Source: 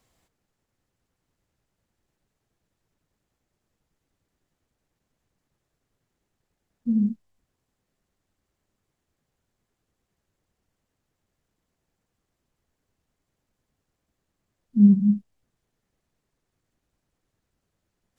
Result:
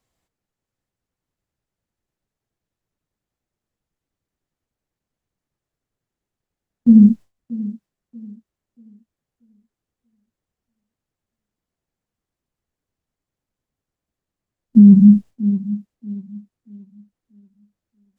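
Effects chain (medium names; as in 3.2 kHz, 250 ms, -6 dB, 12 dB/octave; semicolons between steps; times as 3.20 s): gate with hold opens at -44 dBFS; on a send: thinning echo 634 ms, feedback 38%, high-pass 180 Hz, level -15.5 dB; on the sum: loudness maximiser +15 dB; trim -1 dB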